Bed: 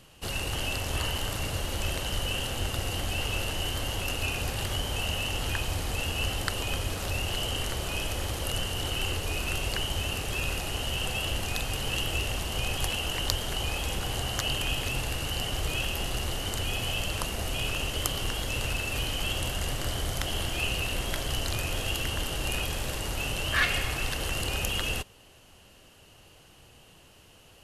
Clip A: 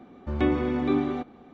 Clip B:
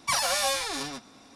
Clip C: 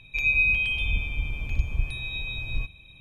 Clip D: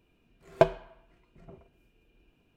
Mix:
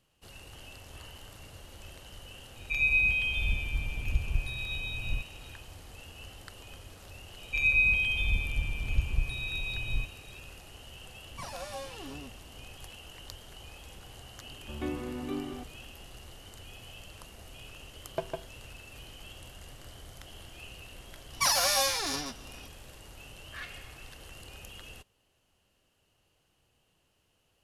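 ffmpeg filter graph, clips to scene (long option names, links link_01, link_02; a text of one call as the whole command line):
ffmpeg -i bed.wav -i cue0.wav -i cue1.wav -i cue2.wav -i cue3.wav -filter_complex "[3:a]asplit=2[link_01][link_02];[2:a]asplit=2[link_03][link_04];[0:a]volume=-17.5dB[link_05];[link_03]tiltshelf=frequency=760:gain=9[link_06];[4:a]aecho=1:1:154:0.631[link_07];[link_04]aexciter=amount=1.7:drive=2.4:freq=4800[link_08];[link_01]atrim=end=3,asetpts=PTS-STARTPTS,volume=-3.5dB,afade=type=in:duration=0.004:curve=hsin,afade=type=out:start_time=2.996:duration=0.004:curve=hsin,adelay=2560[link_09];[link_02]atrim=end=3,asetpts=PTS-STARTPTS,volume=-2.5dB,afade=type=in:duration=0.004:curve=hsin,afade=type=out:start_time=2.996:duration=0.004:curve=hsin,adelay=7390[link_10];[link_06]atrim=end=1.35,asetpts=PTS-STARTPTS,volume=-12dB,afade=type=in:duration=0.004:curve=hsin,afade=type=out:start_time=1.346:duration=0.004:curve=hsin,adelay=498330S[link_11];[1:a]atrim=end=1.53,asetpts=PTS-STARTPTS,volume=-11.5dB,afade=type=in:duration=0.004:curve=hsin,afade=type=out:start_time=1.526:duration=0.004:curve=hsin,adelay=14410[link_12];[link_07]atrim=end=2.56,asetpts=PTS-STARTPTS,volume=-13.5dB,afade=type=in:duration=0.004:curve=hsin,afade=type=out:start_time=2.556:duration=0.004:curve=hsin,adelay=17570[link_13];[link_08]atrim=end=1.35,asetpts=PTS-STARTPTS,volume=-1.5dB,afade=type=in:duration=0.004:curve=hsin,afade=type=out:start_time=1.346:duration=0.004:curve=hsin,adelay=21330[link_14];[link_05][link_09][link_10][link_11][link_12][link_13][link_14]amix=inputs=7:normalize=0" out.wav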